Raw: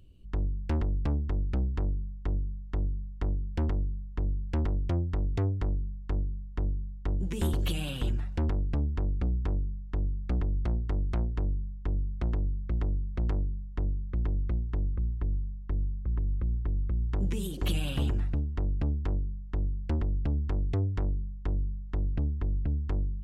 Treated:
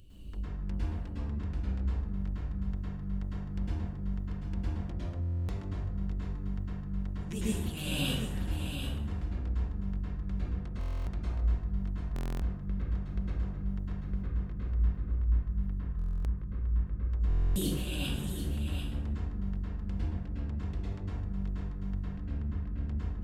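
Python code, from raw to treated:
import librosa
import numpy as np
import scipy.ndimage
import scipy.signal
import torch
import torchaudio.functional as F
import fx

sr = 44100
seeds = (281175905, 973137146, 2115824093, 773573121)

p1 = fx.high_shelf(x, sr, hz=2800.0, db=7.5)
p2 = fx.over_compress(p1, sr, threshold_db=-35.0, ratio=-1.0)
p3 = p2 + fx.echo_single(p2, sr, ms=740, db=-8.0, dry=0)
p4 = fx.rev_plate(p3, sr, seeds[0], rt60_s=1.0, hf_ratio=0.55, predelay_ms=95, drr_db=-8.0)
p5 = fx.buffer_glitch(p4, sr, at_s=(5.21, 10.79, 12.14, 15.97, 17.28), block=1024, repeats=11)
y = p5 * librosa.db_to_amplitude(-6.0)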